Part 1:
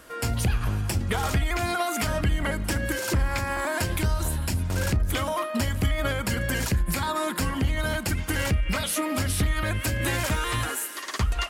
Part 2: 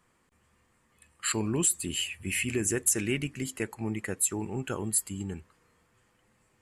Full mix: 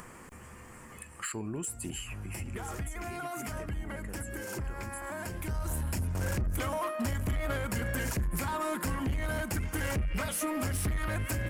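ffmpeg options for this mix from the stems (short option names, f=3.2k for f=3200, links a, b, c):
-filter_complex "[0:a]adelay=1450,volume=-3dB[a];[1:a]acompressor=threshold=-33dB:ratio=6,afade=t=out:st=1.88:d=0.38:silence=0.281838,asplit=2[b][c];[c]apad=whole_len=571085[d];[a][d]sidechaincompress=threshold=-54dB:ratio=10:attack=38:release=611[e];[e][b]amix=inputs=2:normalize=0,equalizer=f=3.8k:w=1.8:g=-10.5,acompressor=mode=upward:threshold=-32dB:ratio=2.5,asoftclip=type=tanh:threshold=-26dB"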